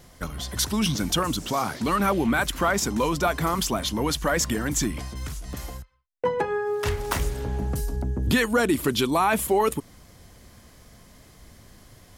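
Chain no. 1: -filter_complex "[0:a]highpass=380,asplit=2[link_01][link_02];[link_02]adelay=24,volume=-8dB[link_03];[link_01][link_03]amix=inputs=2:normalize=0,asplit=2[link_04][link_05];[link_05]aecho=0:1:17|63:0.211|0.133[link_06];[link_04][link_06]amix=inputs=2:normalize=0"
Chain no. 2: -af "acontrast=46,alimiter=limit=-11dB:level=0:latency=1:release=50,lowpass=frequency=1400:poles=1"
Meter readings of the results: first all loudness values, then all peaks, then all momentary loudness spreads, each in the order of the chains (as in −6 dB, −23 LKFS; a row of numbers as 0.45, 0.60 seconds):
−25.5, −23.0 LKFS; −8.0, −11.0 dBFS; 15, 10 LU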